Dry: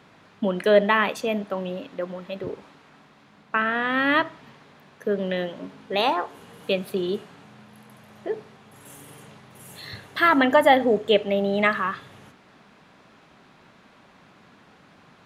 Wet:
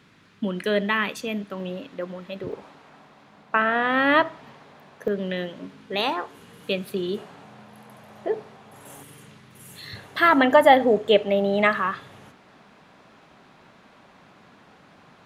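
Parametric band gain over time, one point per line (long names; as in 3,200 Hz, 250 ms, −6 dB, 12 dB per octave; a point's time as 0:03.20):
parametric band 710 Hz 1.3 octaves
−10 dB
from 0:01.60 −3 dB
from 0:02.52 +5.5 dB
from 0:05.08 −5 dB
from 0:07.17 +6 dB
from 0:09.03 −6 dB
from 0:09.96 +2.5 dB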